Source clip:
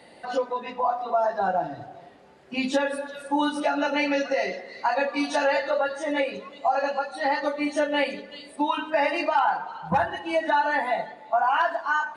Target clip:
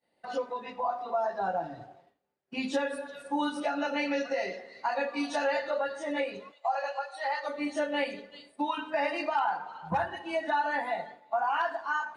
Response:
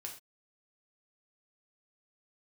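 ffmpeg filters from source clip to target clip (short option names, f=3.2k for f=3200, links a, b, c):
-filter_complex "[0:a]asplit=3[a][b][c];[a]afade=t=out:st=6.51:d=0.02[d];[b]highpass=f=550:w=0.5412,highpass=f=550:w=1.3066,afade=t=in:st=6.51:d=0.02,afade=t=out:st=7.48:d=0.02[e];[c]afade=t=in:st=7.48:d=0.02[f];[d][e][f]amix=inputs=3:normalize=0,agate=range=-33dB:threshold=-38dB:ratio=3:detection=peak,asplit=2[g][h];[1:a]atrim=start_sample=2205[i];[h][i]afir=irnorm=-1:irlink=0,volume=-11dB[j];[g][j]amix=inputs=2:normalize=0,volume=-7.5dB"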